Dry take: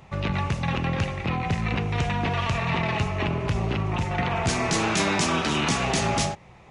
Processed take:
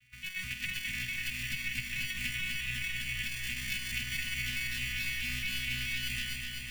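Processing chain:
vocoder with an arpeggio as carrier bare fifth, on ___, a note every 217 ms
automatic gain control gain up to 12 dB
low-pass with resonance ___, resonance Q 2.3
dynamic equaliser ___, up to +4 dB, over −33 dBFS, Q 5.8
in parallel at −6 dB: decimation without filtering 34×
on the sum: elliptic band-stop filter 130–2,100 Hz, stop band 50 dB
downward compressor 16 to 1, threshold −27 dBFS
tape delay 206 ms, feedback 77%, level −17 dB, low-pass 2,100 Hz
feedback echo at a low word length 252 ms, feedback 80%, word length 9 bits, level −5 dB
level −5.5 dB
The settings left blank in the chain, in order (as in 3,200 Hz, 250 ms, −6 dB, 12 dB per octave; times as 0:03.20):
B3, 2,700 Hz, 320 Hz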